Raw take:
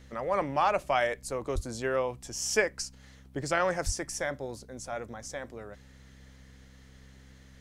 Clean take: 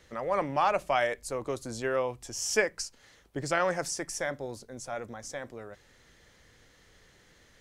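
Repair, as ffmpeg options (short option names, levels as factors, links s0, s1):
-filter_complex "[0:a]bandreject=f=65.7:t=h:w=4,bandreject=f=131.4:t=h:w=4,bandreject=f=197.1:t=h:w=4,bandreject=f=262.8:t=h:w=4,asplit=3[s0][s1][s2];[s0]afade=t=out:st=1.54:d=0.02[s3];[s1]highpass=f=140:w=0.5412,highpass=f=140:w=1.3066,afade=t=in:st=1.54:d=0.02,afade=t=out:st=1.66:d=0.02[s4];[s2]afade=t=in:st=1.66:d=0.02[s5];[s3][s4][s5]amix=inputs=3:normalize=0,asplit=3[s6][s7][s8];[s6]afade=t=out:st=3.85:d=0.02[s9];[s7]highpass=f=140:w=0.5412,highpass=f=140:w=1.3066,afade=t=in:st=3.85:d=0.02,afade=t=out:st=3.97:d=0.02[s10];[s8]afade=t=in:st=3.97:d=0.02[s11];[s9][s10][s11]amix=inputs=3:normalize=0"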